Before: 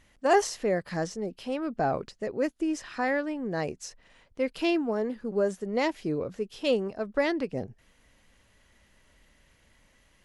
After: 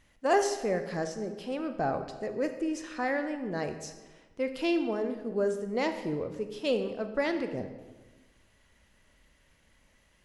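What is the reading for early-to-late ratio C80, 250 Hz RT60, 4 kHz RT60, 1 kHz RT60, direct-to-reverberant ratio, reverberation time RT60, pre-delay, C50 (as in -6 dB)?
10.5 dB, 1.4 s, 0.90 s, 1.2 s, 7.5 dB, 1.2 s, 28 ms, 9.0 dB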